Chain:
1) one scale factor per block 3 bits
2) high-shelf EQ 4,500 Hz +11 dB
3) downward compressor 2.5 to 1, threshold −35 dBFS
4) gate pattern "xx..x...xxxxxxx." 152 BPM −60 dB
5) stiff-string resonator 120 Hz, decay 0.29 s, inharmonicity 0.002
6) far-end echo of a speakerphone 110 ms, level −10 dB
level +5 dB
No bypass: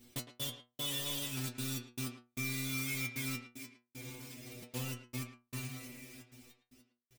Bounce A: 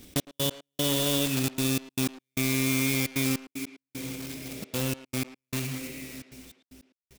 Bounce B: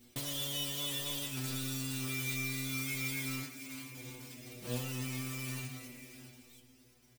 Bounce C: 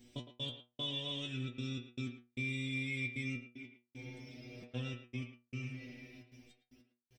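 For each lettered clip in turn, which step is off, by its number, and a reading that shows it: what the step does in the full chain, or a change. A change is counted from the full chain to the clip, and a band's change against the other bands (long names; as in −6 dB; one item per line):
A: 5, 500 Hz band +7.0 dB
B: 4, change in momentary loudness spread −1 LU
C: 1, distortion level −11 dB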